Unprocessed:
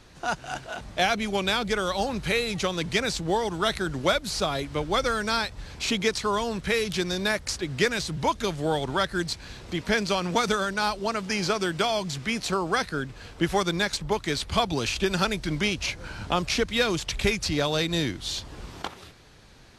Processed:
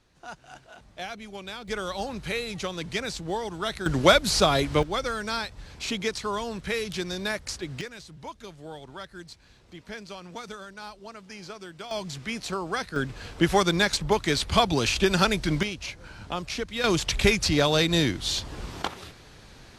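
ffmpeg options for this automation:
-af "asetnsamples=n=441:p=0,asendcmd='1.68 volume volume -5dB;3.86 volume volume 6dB;4.83 volume volume -4dB;7.81 volume volume -15dB;11.91 volume volume -4.5dB;12.96 volume volume 3dB;15.63 volume volume -6.5dB;16.84 volume volume 3.5dB',volume=-13dB"

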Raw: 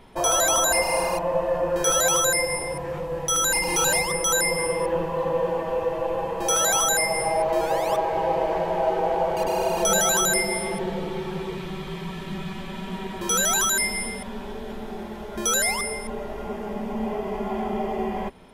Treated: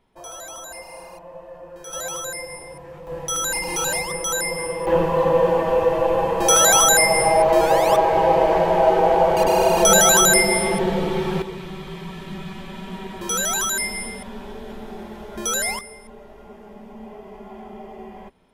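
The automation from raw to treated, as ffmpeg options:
-af "asetnsamples=n=441:p=0,asendcmd='1.93 volume volume -9dB;3.07 volume volume -2dB;4.87 volume volume 7dB;11.42 volume volume -1dB;15.79 volume volume -11dB',volume=-16dB"

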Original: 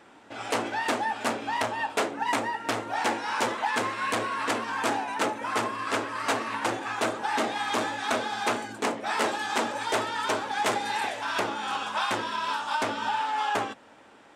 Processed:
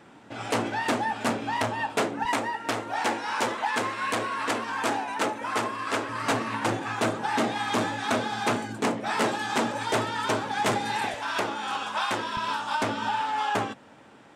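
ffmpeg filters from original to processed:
-af "asetnsamples=n=441:p=0,asendcmd='2.25 equalizer g 1;6.09 equalizer g 12.5;11.14 equalizer g 1;12.37 equalizer g 10',equalizer=f=140:t=o:w=1.5:g=11"

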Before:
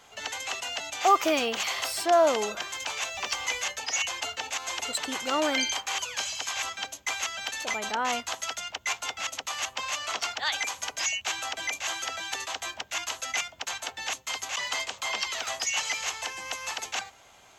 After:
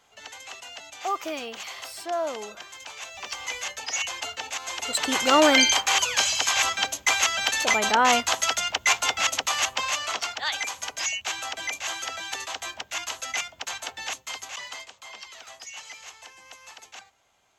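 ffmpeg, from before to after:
-af "volume=9dB,afade=t=in:st=2.95:d=0.96:silence=0.421697,afade=t=in:st=4.8:d=0.42:silence=0.354813,afade=t=out:st=9.32:d=0.95:silence=0.375837,afade=t=out:st=14:d=0.93:silence=0.237137"

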